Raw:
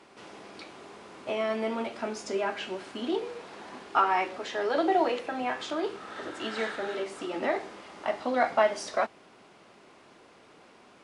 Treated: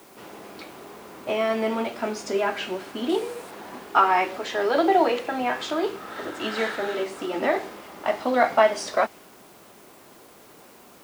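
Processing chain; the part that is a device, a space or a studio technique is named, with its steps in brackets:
plain cassette with noise reduction switched in (one half of a high-frequency compander decoder only; tape wow and flutter 26 cents; white noise bed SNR 29 dB)
0:03.09–0:03.51: parametric band 8,900 Hz +9.5 dB 0.78 octaves
level +5.5 dB

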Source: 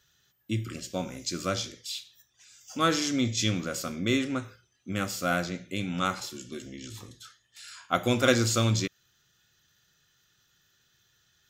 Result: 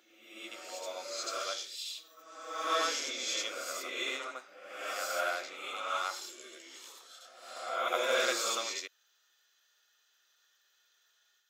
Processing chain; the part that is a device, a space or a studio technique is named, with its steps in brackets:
ghost voice (reversed playback; convolution reverb RT60 1.2 s, pre-delay 64 ms, DRR −4.5 dB; reversed playback; high-pass filter 520 Hz 24 dB per octave)
level −8 dB

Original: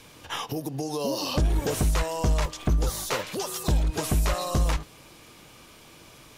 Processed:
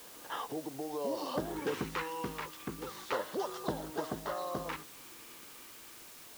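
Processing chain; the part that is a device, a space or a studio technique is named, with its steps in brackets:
shortwave radio (band-pass filter 290–2,600 Hz; amplitude tremolo 0.57 Hz, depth 38%; auto-filter notch square 0.32 Hz 650–2,400 Hz; white noise bed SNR 13 dB)
level −2 dB

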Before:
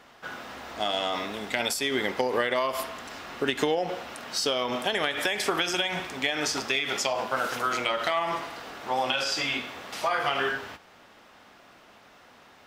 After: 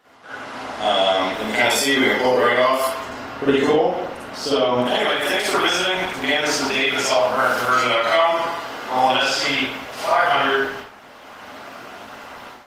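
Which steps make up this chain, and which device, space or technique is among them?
0:02.99–0:04.86: spectral tilt −2 dB per octave
far-field microphone of a smart speaker (convolution reverb RT60 0.60 s, pre-delay 42 ms, DRR −9 dB; high-pass filter 140 Hz 6 dB per octave; automatic gain control gain up to 13.5 dB; level −4.5 dB; Opus 20 kbit/s 48,000 Hz)

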